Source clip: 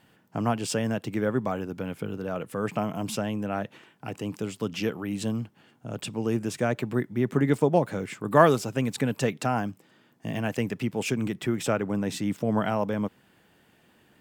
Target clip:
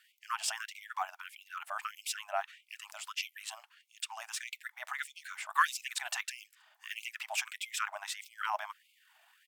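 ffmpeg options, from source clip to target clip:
ffmpeg -i in.wav -filter_complex "[0:a]equalizer=frequency=490:width_type=o:width=0.7:gain=2.5,acrossover=split=350|6600[link_01][link_02][link_03];[link_01]acompressor=threshold=-36dB:ratio=6[link_04];[link_04][link_02][link_03]amix=inputs=3:normalize=0,atempo=1.5,afftfilt=real='re*gte(b*sr/1024,600*pow(2100/600,0.5+0.5*sin(2*PI*1.6*pts/sr)))':imag='im*gte(b*sr/1024,600*pow(2100/600,0.5+0.5*sin(2*PI*1.6*pts/sr)))':win_size=1024:overlap=0.75" out.wav

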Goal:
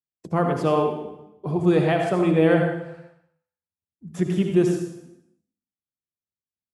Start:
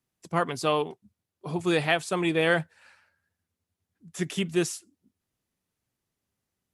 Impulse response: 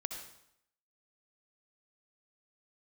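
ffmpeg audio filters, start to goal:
-filter_complex "[0:a]tiltshelf=frequency=1200:gain=9,bandreject=frequency=55.86:width_type=h:width=4,bandreject=frequency=111.72:width_type=h:width=4,bandreject=frequency=167.58:width_type=h:width=4,bandreject=frequency=223.44:width_type=h:width=4,bandreject=frequency=279.3:width_type=h:width=4,bandreject=frequency=335.16:width_type=h:width=4,bandreject=frequency=391.02:width_type=h:width=4,bandreject=frequency=446.88:width_type=h:width=4,bandreject=frequency=502.74:width_type=h:width=4,bandreject=frequency=558.6:width_type=h:width=4,bandreject=frequency=614.46:width_type=h:width=4,bandreject=frequency=670.32:width_type=h:width=4,bandreject=frequency=726.18:width_type=h:width=4,bandreject=frequency=782.04:width_type=h:width=4,agate=range=-33dB:threshold=-54dB:ratio=3:detection=peak[link_01];[1:a]atrim=start_sample=2205[link_02];[link_01][link_02]afir=irnorm=-1:irlink=0,asplit=2[link_03][link_04];[link_04]acompressor=threshold=-38dB:ratio=6,volume=-1.5dB[link_05];[link_03][link_05]amix=inputs=2:normalize=0"

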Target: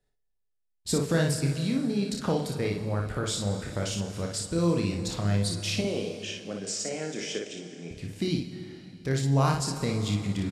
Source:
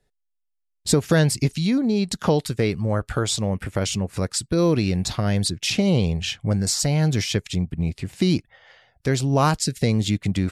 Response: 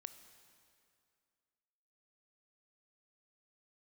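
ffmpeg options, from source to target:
-filter_complex "[0:a]asettb=1/sr,asplit=3[link_01][link_02][link_03];[link_01]atrim=end=5.814[link_04];[link_02]atrim=start=5.81:end=7.91,asetpts=PTS-STARTPTS,afade=type=in:duration=0.004:curve=qsin,afade=type=out:start_time=2.096:duration=0.004:curve=qsin,highpass=frequency=250:width=0.5412,highpass=frequency=250:width=1.3066,equalizer=frequency=430:width_type=q:width=4:gain=3,equalizer=frequency=910:width_type=q:width=4:gain=-9,equalizer=frequency=4200:width_type=q:width=4:gain=-9,lowpass=frequency=8100:width=0.5412,lowpass=frequency=8100:width=1.3066[link_05];[link_03]atrim=start=7.906[link_06];[link_04][link_05]acrossfade=duration=0.004:curve1=hsin:curve2=qsin[link_07];[link_07][link_06]acrossfade=duration=0.004:curve1=qsin:curve2=hsin,aecho=1:1:30|58:0.501|0.596[link_08];[1:a]atrim=start_sample=2205,asetrate=32634,aresample=44100[link_09];[link_08][link_09]afir=irnorm=-1:irlink=0,volume=-4.5dB"

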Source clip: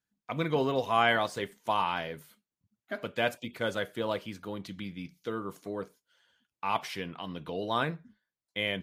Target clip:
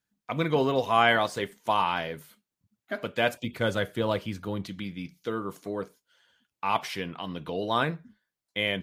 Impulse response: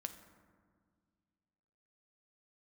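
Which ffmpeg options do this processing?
-filter_complex "[0:a]asettb=1/sr,asplit=3[link_01][link_02][link_03];[link_01]atrim=end=3.364[link_04];[link_02]atrim=start=3.36:end=4.66,asetpts=PTS-STARTPTS,afade=type=in:duration=0.004:curve=qsin,afade=type=out:start_time=1.296:duration=0.004:curve=qsin,equalizer=frequency=64:width=0.49:gain=9.5[link_05];[link_03]atrim=start=4.656[link_06];[link_04][link_05]acrossfade=duration=0.004:curve1=hsin:curve2=qsin[link_07];[link_07][link_06]acrossfade=duration=0.004:curve1=qsin:curve2=hsin,volume=3.5dB"

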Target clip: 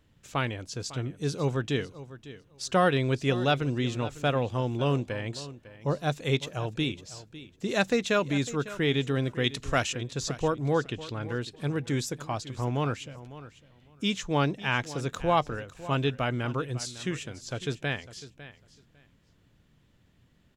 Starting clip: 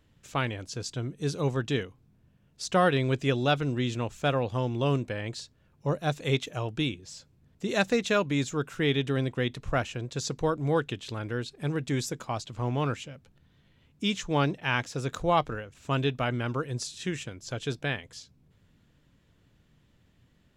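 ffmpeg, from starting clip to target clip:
ffmpeg -i in.wav -filter_complex "[0:a]asettb=1/sr,asplit=3[link_01][link_02][link_03];[link_01]atrim=end=9.444[link_04];[link_02]atrim=start=9.44:end=9.93,asetpts=PTS-STARTPTS,afade=type=in:duration=0.004:curve=qsin,afade=type=out:start_time=0.486:duration=0.004:curve=qsin,equalizer=frequency=6700:width_type=o:width=2.6:gain=12.5[link_05];[link_03]atrim=start=9.926[link_06];[link_04][link_05]acrossfade=duration=0.004:curve1=hsin:curve2=qsin[link_07];[link_07][link_06]acrossfade=duration=0.004:curve1=qsin:curve2=hsin,asettb=1/sr,asplit=3[link_08][link_09][link_10];[link_08]atrim=end=10.734[link_11];[link_09]atrim=start=10.73:end=11.29,asetpts=PTS-STARTPTS,afade=type=in:duration=0.004:curve=qsin,afade=type=out:start_time=0.556:duration=0.004:curve=qsin,adynamicsmooth=sensitivity=2.5:basefreq=7700[link_12];[link_10]atrim=start=11.286[link_13];[link_11][link_12]acrossfade=duration=0.004:curve1=hsin:curve2=qsin[link_14];[link_14][link_13]acrossfade=duration=0.004:curve1=qsin:curve2=hsin,aecho=1:1:552|1104:0.158|0.0254" out.wav

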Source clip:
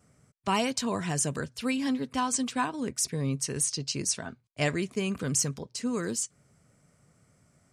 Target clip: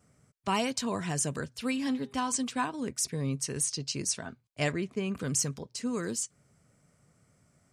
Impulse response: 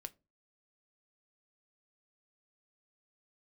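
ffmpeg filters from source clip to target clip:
-filter_complex "[0:a]asettb=1/sr,asplit=3[link_01][link_02][link_03];[link_01]atrim=end=1.504[link_04];[link_02]atrim=start=1.5:end=2.32,asetpts=PTS-STARTPTS,afade=type=in:duration=0.004:curve=qsin,afade=type=out:start_time=0.816:duration=0.004:curve=qsin,bandreject=frequency=202.1:width_type=h:width=4,bandreject=frequency=404.2:width_type=h:width=4,bandreject=frequency=606.3:width_type=h:width=4,bandreject=frequency=808.4:width_type=h:width=4,bandreject=frequency=1010.5:width_type=h:width=4,bandreject=frequency=1212.6:width_type=h:width=4,bandreject=frequency=1414.7:width_type=h:width=4,bandreject=frequency=1616.8:width_type=h:width=4,bandreject=frequency=1818.9:width_type=h:width=4,bandreject=frequency=2021:width_type=h:width=4,bandreject=frequency=2223.1:width_type=h:width=4,bandreject=frequency=2425.2:width_type=h:width=4,bandreject=frequency=2627.3:width_type=h:width=4,bandreject=frequency=2829.4:width_type=h:width=4,bandreject=frequency=3031.5:width_type=h:width=4,bandreject=frequency=3233.6:width_type=h:width=4,bandreject=frequency=3435.7:width_type=h:width=4,bandreject=frequency=3637.8:width_type=h:width=4,bandreject=frequency=3839.9:width_type=h:width=4[link_05];[link_03]atrim=start=2.316[link_06];[link_04][link_05]acrossfade=duration=0.004:curve1=hsin:curve2=qsin[link_07];[link_07][link_06]acrossfade=duration=0.004:curve1=qsin:curve2=hsin,asettb=1/sr,asplit=3[link_08][link_09][link_10];[link_08]atrim=end=4.724[link_11];[link_09]atrim=start=4.72:end=5.15,asetpts=PTS-STARTPTS,afade=type=in:duration=0.004:curve=qsin,afade=type=out:start_time=0.426:duration=0.004:curve=qsin,lowpass=frequency=2400:poles=1[link_12];[link_10]atrim=start=5.146[link_13];[link_11][link_12]acrossfade=duration=0.004:curve1=hsin:curve2=qsin[link_14];[link_14][link_13]acrossfade=duration=0.004:curve1=qsin:curve2=hsin,volume=-2dB"

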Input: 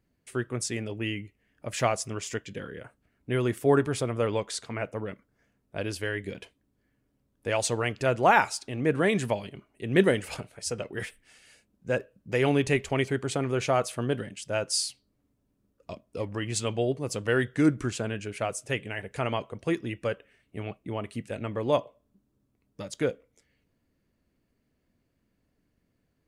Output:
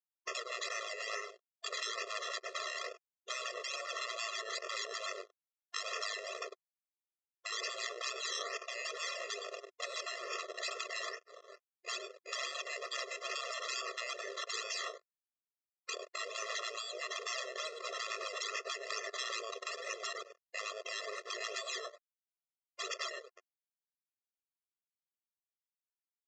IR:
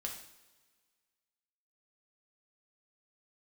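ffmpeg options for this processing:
-filter_complex "[0:a]asplit=2[link_01][link_02];[link_02]adelay=99,lowpass=frequency=3600:poles=1,volume=-13dB,asplit=2[link_03][link_04];[link_04]adelay=99,lowpass=frequency=3600:poles=1,volume=0.16[link_05];[link_01][link_03][link_05]amix=inputs=3:normalize=0,agate=range=-33dB:threshold=-54dB:ratio=3:detection=peak,lowshelf=frequency=100:gain=-6,asplit=2[link_06][link_07];[1:a]atrim=start_sample=2205,atrim=end_sample=6174,asetrate=61740,aresample=44100[link_08];[link_07][link_08]afir=irnorm=-1:irlink=0,volume=-17dB[link_09];[link_06][link_09]amix=inputs=2:normalize=0,acrusher=samples=15:mix=1:aa=0.000001:lfo=1:lforange=9:lforate=2.3,acompressor=threshold=-38dB:ratio=10,aeval=exprs='sgn(val(0))*max(abs(val(0))-0.00133,0)':channel_layout=same,afftfilt=real='re*lt(hypot(re,im),0.0112)':imag='im*lt(hypot(re,im),0.0112)':win_size=1024:overlap=0.75,aresample=16000,aresample=44100,afftfilt=real='re*eq(mod(floor(b*sr/1024/350),2),1)':imag='im*eq(mod(floor(b*sr/1024/350),2),1)':win_size=1024:overlap=0.75,volume=16.5dB"

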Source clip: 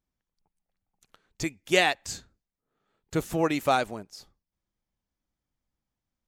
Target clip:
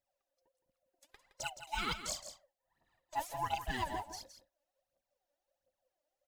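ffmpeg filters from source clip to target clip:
ffmpeg -i in.wav -af "afftfilt=real='real(if(lt(b,1008),b+24*(1-2*mod(floor(b/24),2)),b),0)':imag='imag(if(lt(b,1008),b+24*(1-2*mod(floor(b/24),2)),b),0)':win_size=2048:overlap=0.75,acrusher=bits=7:mode=log:mix=0:aa=0.000001,areverse,acompressor=threshold=-31dB:ratio=20,areverse,aphaser=in_gain=1:out_gain=1:delay=3.6:decay=0.73:speed=1.4:type=triangular,aecho=1:1:166:0.299,volume=-5dB" out.wav

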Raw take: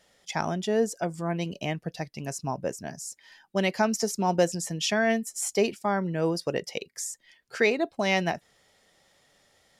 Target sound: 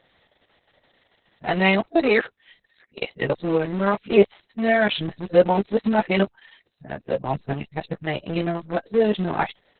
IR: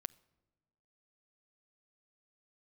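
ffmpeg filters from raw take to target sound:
-filter_complex "[0:a]areverse,equalizer=frequency=8400:width_type=o:width=0.74:gain=-9,aphaser=in_gain=1:out_gain=1:delay=4:decay=0.24:speed=1.2:type=sinusoidal,asplit=2[link_01][link_02];[link_02]aeval=exprs='val(0)*gte(abs(val(0)),0.0398)':channel_layout=same,volume=-4.5dB[link_03];[link_01][link_03]amix=inputs=2:normalize=0,asplit=2[link_04][link_05];[link_05]adelay=15,volume=-9.5dB[link_06];[link_04][link_06]amix=inputs=2:normalize=0,volume=2.5dB" -ar 48000 -c:a libopus -b:a 6k

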